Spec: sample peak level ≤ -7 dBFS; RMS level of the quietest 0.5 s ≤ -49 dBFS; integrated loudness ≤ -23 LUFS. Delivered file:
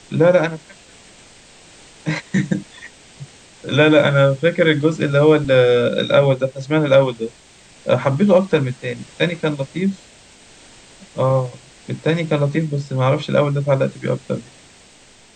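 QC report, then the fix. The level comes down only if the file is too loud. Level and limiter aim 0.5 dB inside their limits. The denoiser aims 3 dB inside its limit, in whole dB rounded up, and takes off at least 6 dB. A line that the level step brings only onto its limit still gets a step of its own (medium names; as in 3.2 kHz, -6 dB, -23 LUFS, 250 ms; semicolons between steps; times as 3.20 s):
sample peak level -2.0 dBFS: fail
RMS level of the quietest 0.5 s -48 dBFS: fail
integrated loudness -17.5 LUFS: fail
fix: trim -6 dB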